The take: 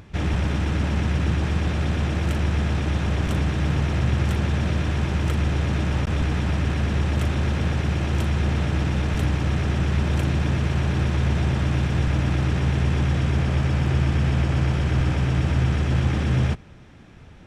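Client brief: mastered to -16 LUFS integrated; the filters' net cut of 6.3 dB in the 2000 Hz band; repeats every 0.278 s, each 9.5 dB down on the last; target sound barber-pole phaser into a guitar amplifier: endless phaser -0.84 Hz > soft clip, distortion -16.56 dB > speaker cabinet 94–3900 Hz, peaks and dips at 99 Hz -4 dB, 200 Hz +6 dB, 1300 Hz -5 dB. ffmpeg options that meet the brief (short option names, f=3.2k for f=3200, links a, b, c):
-filter_complex "[0:a]equalizer=f=2k:t=o:g=-7,aecho=1:1:278|556|834|1112:0.335|0.111|0.0365|0.012,asplit=2[a][b];[b]afreqshift=-0.84[c];[a][c]amix=inputs=2:normalize=1,asoftclip=threshold=-19.5dB,highpass=94,equalizer=f=99:t=q:w=4:g=-4,equalizer=f=200:t=q:w=4:g=6,equalizer=f=1.3k:t=q:w=4:g=-5,lowpass=f=3.9k:w=0.5412,lowpass=f=3.9k:w=1.3066,volume=13.5dB"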